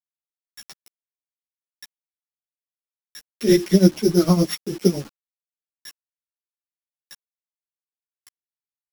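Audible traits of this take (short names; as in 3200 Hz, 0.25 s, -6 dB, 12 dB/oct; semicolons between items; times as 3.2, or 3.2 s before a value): a buzz of ramps at a fixed pitch in blocks of 8 samples; tremolo triangle 8.9 Hz, depth 90%; a quantiser's noise floor 8-bit, dither none; a shimmering, thickened sound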